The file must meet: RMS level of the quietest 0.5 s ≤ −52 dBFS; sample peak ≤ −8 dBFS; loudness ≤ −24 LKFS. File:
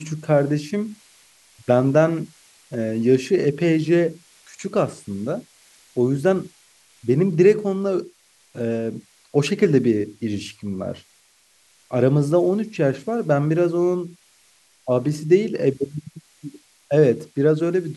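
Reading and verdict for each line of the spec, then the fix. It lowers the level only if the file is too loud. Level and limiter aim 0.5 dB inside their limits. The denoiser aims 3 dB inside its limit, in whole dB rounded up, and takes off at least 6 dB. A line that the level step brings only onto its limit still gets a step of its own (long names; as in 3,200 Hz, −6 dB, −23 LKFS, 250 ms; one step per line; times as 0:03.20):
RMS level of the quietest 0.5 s −58 dBFS: in spec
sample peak −4.0 dBFS: out of spec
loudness −21.0 LKFS: out of spec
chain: level −3.5 dB
brickwall limiter −8.5 dBFS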